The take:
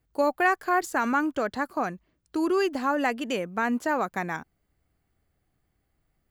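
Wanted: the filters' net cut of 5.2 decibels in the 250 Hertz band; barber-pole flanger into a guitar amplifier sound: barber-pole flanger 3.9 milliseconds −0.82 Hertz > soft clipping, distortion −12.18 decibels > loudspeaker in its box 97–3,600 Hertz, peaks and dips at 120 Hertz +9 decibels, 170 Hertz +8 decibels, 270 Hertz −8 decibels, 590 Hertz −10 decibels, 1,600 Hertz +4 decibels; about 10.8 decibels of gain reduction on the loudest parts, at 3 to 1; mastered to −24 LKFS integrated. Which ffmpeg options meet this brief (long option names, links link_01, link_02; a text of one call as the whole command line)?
ffmpeg -i in.wav -filter_complex "[0:a]equalizer=frequency=250:width_type=o:gain=-3.5,acompressor=threshold=-34dB:ratio=3,asplit=2[link_01][link_02];[link_02]adelay=3.9,afreqshift=-0.82[link_03];[link_01][link_03]amix=inputs=2:normalize=1,asoftclip=threshold=-34.5dB,highpass=97,equalizer=frequency=120:width_type=q:width=4:gain=9,equalizer=frequency=170:width_type=q:width=4:gain=8,equalizer=frequency=270:width_type=q:width=4:gain=-8,equalizer=frequency=590:width_type=q:width=4:gain=-10,equalizer=frequency=1600:width_type=q:width=4:gain=4,lowpass=frequency=3600:width=0.5412,lowpass=frequency=3600:width=1.3066,volume=19dB" out.wav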